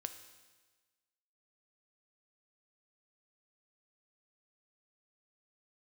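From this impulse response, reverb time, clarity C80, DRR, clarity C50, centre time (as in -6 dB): 1.3 s, 11.5 dB, 7.5 dB, 10.0 dB, 16 ms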